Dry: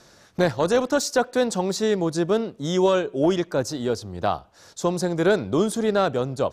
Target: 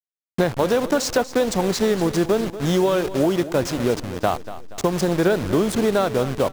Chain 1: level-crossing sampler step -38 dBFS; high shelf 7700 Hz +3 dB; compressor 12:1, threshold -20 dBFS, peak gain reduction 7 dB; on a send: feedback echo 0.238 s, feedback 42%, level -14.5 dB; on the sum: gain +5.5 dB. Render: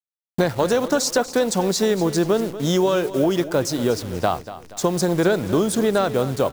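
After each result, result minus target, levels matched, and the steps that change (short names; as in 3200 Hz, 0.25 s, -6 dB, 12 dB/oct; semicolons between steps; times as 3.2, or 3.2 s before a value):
level-crossing sampler: distortion -10 dB; 8000 Hz band +3.0 dB
change: level-crossing sampler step -28 dBFS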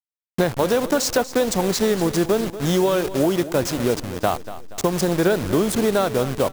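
8000 Hz band +3.0 dB
change: high shelf 7700 Hz -4.5 dB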